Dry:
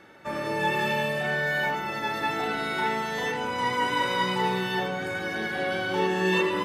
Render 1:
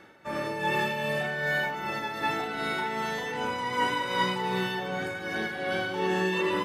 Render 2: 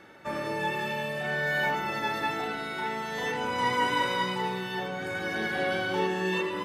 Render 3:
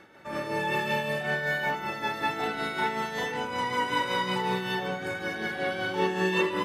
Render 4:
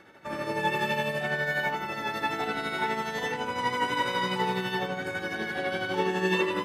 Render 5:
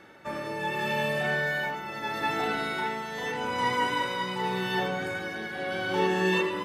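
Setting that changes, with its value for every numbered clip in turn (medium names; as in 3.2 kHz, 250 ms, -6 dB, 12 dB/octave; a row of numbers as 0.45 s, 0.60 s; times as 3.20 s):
tremolo, rate: 2.6 Hz, 0.54 Hz, 5.3 Hz, 12 Hz, 0.82 Hz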